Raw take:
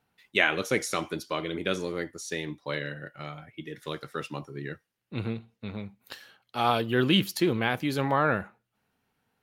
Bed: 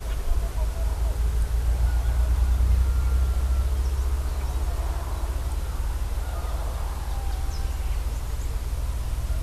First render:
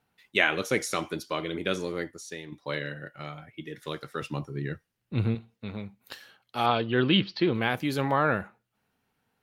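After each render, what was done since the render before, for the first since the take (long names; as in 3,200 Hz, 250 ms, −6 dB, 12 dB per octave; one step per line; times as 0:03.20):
0:02.06–0:02.52: fade out quadratic, to −8 dB
0:04.22–0:05.35: low-shelf EQ 170 Hz +11 dB
0:06.66–0:07.55: Butterworth low-pass 4,700 Hz 48 dB per octave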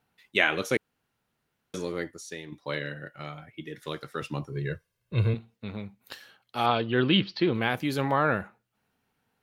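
0:00.77–0:01.74: fill with room tone
0:04.52–0:05.34: comb filter 1.9 ms, depth 83%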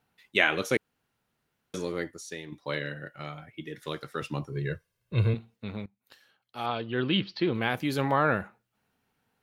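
0:05.86–0:08.00: fade in, from −19 dB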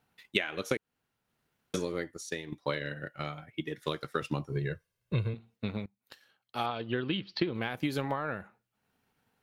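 downward compressor 16 to 1, threshold −29 dBFS, peak gain reduction 13 dB
transient designer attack +5 dB, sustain −4 dB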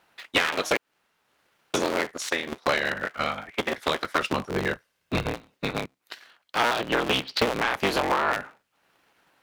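sub-harmonics by changed cycles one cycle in 3, inverted
mid-hump overdrive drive 20 dB, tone 4,900 Hz, clips at −9.5 dBFS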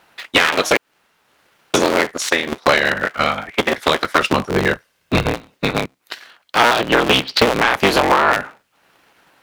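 level +10 dB
brickwall limiter −3 dBFS, peak gain reduction 2.5 dB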